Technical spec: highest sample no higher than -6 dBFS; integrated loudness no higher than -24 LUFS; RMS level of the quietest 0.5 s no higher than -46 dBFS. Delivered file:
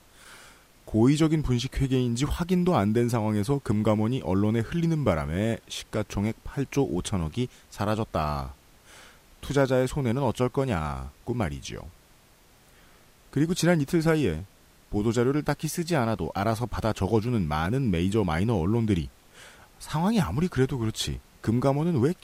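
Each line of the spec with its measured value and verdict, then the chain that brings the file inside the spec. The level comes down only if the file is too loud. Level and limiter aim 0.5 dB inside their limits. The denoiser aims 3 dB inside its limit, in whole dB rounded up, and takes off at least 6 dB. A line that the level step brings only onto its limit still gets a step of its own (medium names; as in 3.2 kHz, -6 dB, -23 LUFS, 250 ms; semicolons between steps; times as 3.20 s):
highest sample -9.5 dBFS: pass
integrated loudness -26.5 LUFS: pass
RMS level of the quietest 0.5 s -57 dBFS: pass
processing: none needed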